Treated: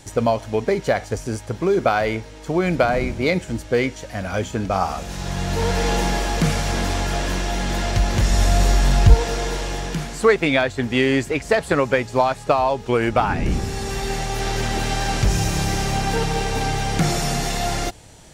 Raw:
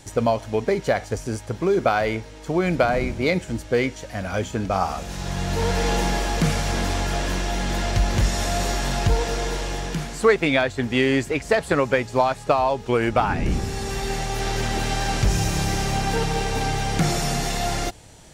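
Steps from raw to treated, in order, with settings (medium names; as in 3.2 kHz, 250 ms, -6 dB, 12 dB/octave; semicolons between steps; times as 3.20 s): 8.30–9.14 s: bass shelf 120 Hz +11 dB; trim +1.5 dB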